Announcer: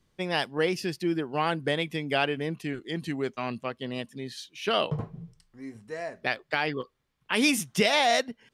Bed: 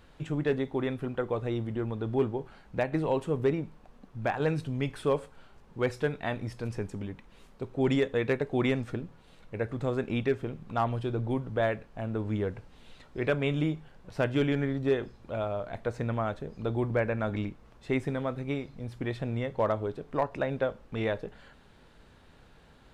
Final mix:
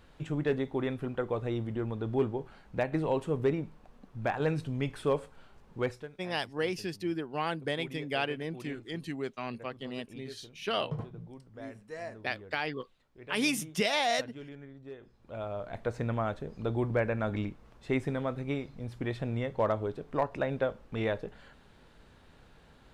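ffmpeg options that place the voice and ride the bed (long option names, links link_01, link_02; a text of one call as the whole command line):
ffmpeg -i stem1.wav -i stem2.wav -filter_complex "[0:a]adelay=6000,volume=-5.5dB[link_01];[1:a]volume=16.5dB,afade=type=out:start_time=5.79:duration=0.29:silence=0.133352,afade=type=in:start_time=15:duration=0.84:silence=0.125893[link_02];[link_01][link_02]amix=inputs=2:normalize=0" out.wav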